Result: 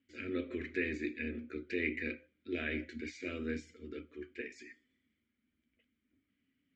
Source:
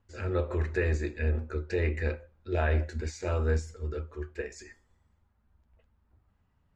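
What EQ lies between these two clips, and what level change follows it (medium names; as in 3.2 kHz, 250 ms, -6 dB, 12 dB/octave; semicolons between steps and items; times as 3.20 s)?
vowel filter i; bass shelf 350 Hz -9 dB; +13.5 dB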